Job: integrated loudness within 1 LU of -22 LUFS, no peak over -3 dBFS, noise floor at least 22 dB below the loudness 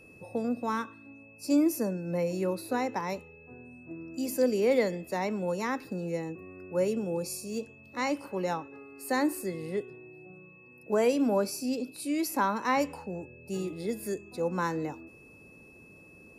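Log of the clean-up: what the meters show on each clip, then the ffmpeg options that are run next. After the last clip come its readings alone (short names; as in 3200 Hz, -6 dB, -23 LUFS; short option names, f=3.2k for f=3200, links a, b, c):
steady tone 2600 Hz; tone level -54 dBFS; loudness -31.0 LUFS; peak -14.0 dBFS; loudness target -22.0 LUFS
-> -af "bandreject=f=2.6k:w=30"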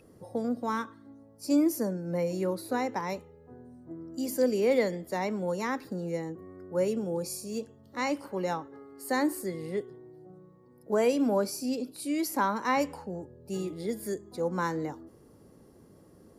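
steady tone none; loudness -31.0 LUFS; peak -14.0 dBFS; loudness target -22.0 LUFS
-> -af "volume=9dB"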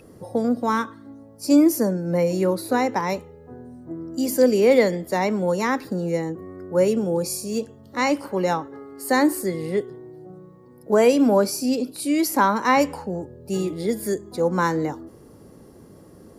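loudness -22.0 LUFS; peak -5.0 dBFS; noise floor -48 dBFS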